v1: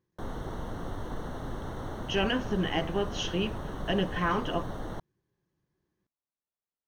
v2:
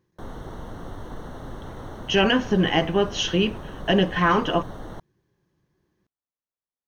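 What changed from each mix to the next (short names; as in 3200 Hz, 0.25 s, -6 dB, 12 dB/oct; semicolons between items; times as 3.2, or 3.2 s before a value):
speech +9.0 dB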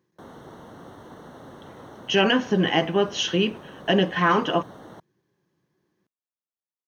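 background -4.0 dB; master: add HPF 150 Hz 12 dB/oct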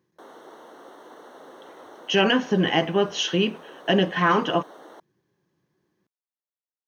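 background: add HPF 320 Hz 24 dB/oct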